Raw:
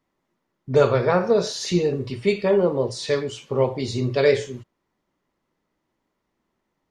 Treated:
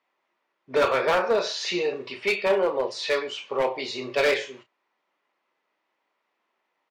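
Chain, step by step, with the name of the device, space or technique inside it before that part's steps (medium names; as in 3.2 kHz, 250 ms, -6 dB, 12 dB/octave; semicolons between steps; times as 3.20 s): megaphone (band-pass 640–4000 Hz; peaking EQ 2.5 kHz +5 dB 0.35 oct; hard clipper -20 dBFS, distortion -12 dB; doubling 31 ms -10.5 dB); trim +3.5 dB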